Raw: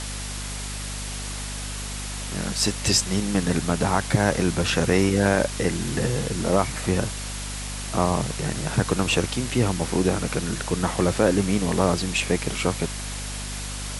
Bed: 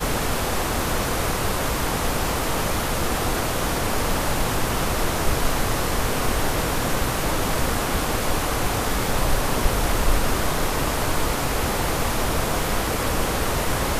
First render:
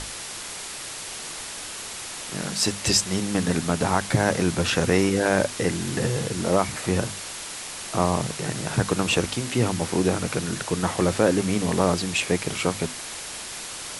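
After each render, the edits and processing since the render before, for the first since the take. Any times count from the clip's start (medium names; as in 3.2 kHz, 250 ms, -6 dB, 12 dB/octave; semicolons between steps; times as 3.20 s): hum notches 50/100/150/200/250 Hz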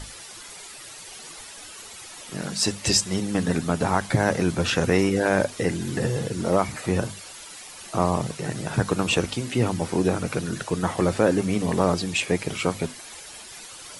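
noise reduction 11 dB, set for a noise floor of -36 dBFS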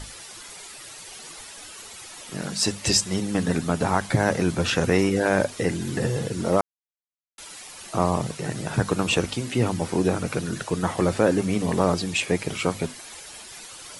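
6.61–7.38 s: mute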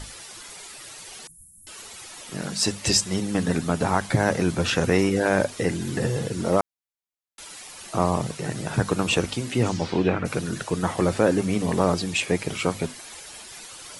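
1.27–1.67 s: inverse Chebyshev band-stop 540–4000 Hz, stop band 60 dB; 9.63–10.24 s: resonant low-pass 7.8 kHz -> 1.9 kHz, resonance Q 2.1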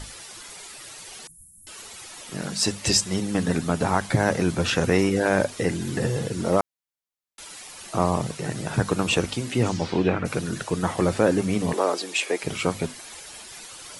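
11.73–12.43 s: high-pass 320 Hz 24 dB/octave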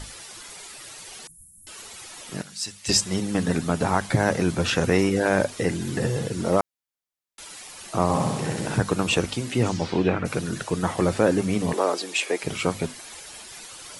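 2.42–2.89 s: amplifier tone stack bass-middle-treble 5-5-5; 8.03–8.78 s: flutter echo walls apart 10.9 m, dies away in 1.1 s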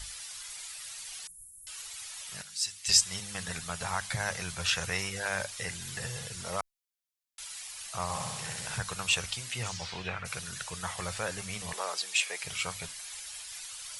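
amplifier tone stack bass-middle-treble 10-0-10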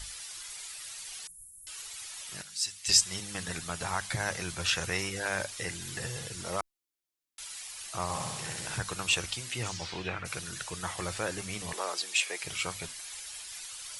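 peaking EQ 320 Hz +11.5 dB 0.52 oct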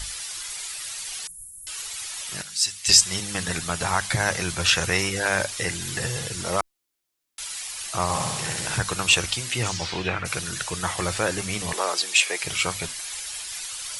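trim +9 dB; peak limiter -3 dBFS, peak gain reduction 2.5 dB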